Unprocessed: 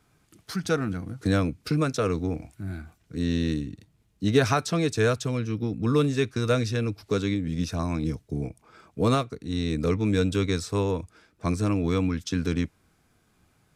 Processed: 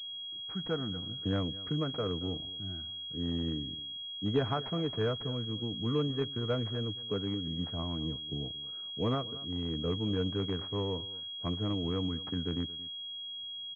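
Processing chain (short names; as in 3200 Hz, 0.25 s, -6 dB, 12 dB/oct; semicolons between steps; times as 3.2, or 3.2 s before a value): Wiener smoothing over 9 samples; echo 0.226 s -18.5 dB; pulse-width modulation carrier 3300 Hz; gain -8.5 dB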